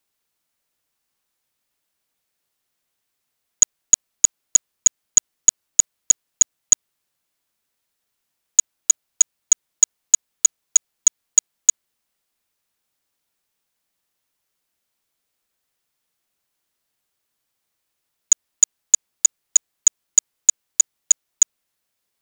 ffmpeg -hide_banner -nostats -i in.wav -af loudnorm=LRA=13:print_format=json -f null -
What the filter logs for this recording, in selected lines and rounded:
"input_i" : "-17.8",
"input_tp" : "-2.7",
"input_lra" : "4.8",
"input_thresh" : "-27.8",